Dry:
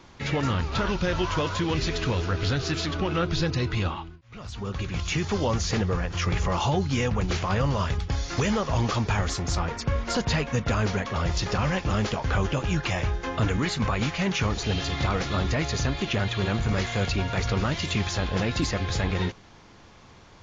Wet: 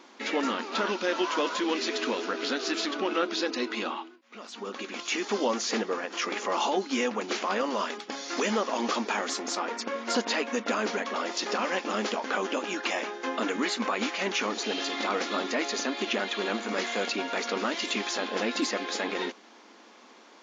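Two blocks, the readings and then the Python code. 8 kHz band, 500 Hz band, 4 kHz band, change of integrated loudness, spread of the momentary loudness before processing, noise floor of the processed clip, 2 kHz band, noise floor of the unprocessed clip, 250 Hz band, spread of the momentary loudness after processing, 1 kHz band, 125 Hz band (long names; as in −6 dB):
can't be measured, 0.0 dB, 0.0 dB, −3.0 dB, 3 LU, −53 dBFS, 0.0 dB, −50 dBFS, −3.5 dB, 5 LU, 0.0 dB, below −25 dB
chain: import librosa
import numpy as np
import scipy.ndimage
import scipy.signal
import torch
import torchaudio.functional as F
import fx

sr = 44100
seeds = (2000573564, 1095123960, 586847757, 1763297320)

y = fx.brickwall_highpass(x, sr, low_hz=210.0)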